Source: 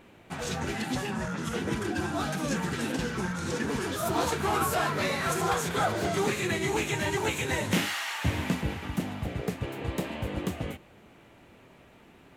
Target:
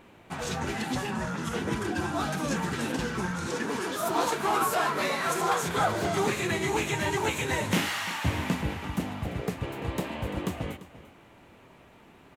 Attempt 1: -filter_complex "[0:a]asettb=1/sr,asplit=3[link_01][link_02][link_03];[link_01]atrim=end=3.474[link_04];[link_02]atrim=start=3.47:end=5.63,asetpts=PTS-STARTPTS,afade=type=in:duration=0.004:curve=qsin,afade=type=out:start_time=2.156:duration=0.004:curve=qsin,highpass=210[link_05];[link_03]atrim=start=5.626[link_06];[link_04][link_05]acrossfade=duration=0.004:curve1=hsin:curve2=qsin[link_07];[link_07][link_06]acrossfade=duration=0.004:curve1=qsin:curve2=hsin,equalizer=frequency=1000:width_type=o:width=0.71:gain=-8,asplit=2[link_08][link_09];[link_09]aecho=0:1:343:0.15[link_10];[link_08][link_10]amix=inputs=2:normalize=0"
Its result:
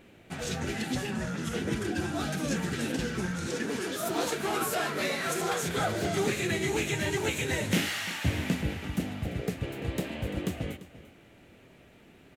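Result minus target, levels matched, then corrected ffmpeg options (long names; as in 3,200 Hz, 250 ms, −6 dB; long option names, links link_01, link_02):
1,000 Hz band −5.0 dB
-filter_complex "[0:a]asettb=1/sr,asplit=3[link_01][link_02][link_03];[link_01]atrim=end=3.474[link_04];[link_02]atrim=start=3.47:end=5.63,asetpts=PTS-STARTPTS,afade=type=in:duration=0.004:curve=qsin,afade=type=out:start_time=2.156:duration=0.004:curve=qsin,highpass=210[link_05];[link_03]atrim=start=5.626[link_06];[link_04][link_05]acrossfade=duration=0.004:curve1=hsin:curve2=qsin[link_07];[link_07][link_06]acrossfade=duration=0.004:curve1=qsin:curve2=hsin,equalizer=frequency=1000:width_type=o:width=0.71:gain=3.5,asplit=2[link_08][link_09];[link_09]aecho=0:1:343:0.15[link_10];[link_08][link_10]amix=inputs=2:normalize=0"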